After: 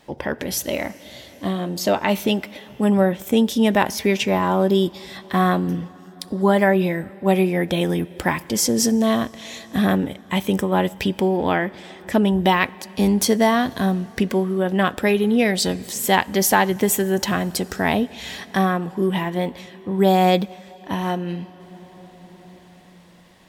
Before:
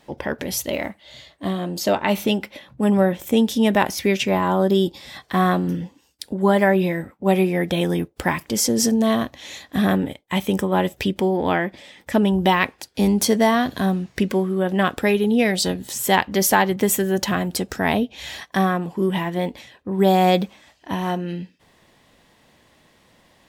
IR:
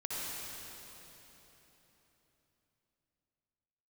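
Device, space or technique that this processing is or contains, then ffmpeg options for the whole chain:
ducked reverb: -filter_complex "[0:a]asplit=3[link_01][link_02][link_03];[1:a]atrim=start_sample=2205[link_04];[link_02][link_04]afir=irnorm=-1:irlink=0[link_05];[link_03]apad=whole_len=1035615[link_06];[link_05][link_06]sidechaincompress=threshold=-32dB:ratio=5:attack=23:release=1400,volume=-9dB[link_07];[link_01][link_07]amix=inputs=2:normalize=0"

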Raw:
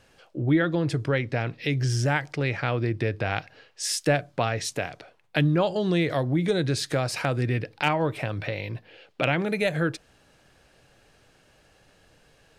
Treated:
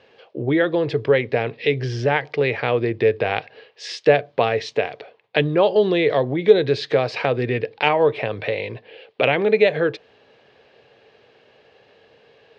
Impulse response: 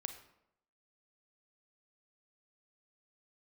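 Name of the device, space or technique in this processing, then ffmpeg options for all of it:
kitchen radio: -af "highpass=170,equalizer=frequency=170:width_type=q:width=4:gain=-9,equalizer=frequency=300:width_type=q:width=4:gain=-7,equalizer=frequency=440:width_type=q:width=4:gain=9,equalizer=frequency=1400:width_type=q:width=4:gain=-7,lowpass=frequency=4000:width=0.5412,lowpass=frequency=4000:width=1.3066,volume=6.5dB"

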